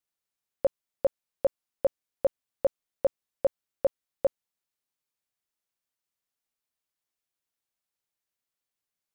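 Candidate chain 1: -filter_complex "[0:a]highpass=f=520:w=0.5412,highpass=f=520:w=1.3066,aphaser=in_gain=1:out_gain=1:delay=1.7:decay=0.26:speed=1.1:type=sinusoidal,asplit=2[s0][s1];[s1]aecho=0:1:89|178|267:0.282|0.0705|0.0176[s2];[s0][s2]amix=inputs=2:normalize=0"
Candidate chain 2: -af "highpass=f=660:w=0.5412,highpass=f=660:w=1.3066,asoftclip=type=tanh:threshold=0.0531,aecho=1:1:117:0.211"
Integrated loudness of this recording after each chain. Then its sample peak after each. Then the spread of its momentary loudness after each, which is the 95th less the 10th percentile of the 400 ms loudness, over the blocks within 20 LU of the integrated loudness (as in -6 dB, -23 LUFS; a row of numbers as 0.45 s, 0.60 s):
-33.5 LUFS, -42.0 LUFS; -15.5 dBFS, -26.0 dBFS; 4 LU, 0 LU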